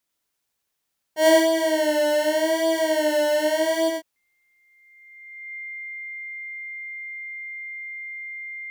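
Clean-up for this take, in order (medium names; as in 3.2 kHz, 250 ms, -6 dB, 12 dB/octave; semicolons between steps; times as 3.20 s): band-stop 2.1 kHz, Q 30; inverse comb 92 ms -3 dB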